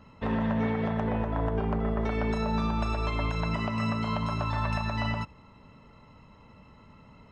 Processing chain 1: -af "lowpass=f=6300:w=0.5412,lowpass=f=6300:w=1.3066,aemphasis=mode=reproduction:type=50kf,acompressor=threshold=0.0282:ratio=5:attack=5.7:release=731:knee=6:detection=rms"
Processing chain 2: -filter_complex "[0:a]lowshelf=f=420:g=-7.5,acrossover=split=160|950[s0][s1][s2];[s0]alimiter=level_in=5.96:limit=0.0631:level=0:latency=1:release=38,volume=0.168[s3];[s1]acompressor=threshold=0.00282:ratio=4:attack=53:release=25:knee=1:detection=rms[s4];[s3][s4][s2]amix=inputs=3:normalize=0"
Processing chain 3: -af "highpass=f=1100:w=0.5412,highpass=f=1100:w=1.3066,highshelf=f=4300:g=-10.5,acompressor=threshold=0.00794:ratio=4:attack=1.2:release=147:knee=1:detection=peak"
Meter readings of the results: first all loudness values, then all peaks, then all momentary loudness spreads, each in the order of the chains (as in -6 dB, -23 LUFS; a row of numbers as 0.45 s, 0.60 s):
-37.5 LUFS, -37.0 LUFS, -46.0 LUFS; -24.5 dBFS, -21.5 dBFS, -33.0 dBFS; 19 LU, 5 LU, 18 LU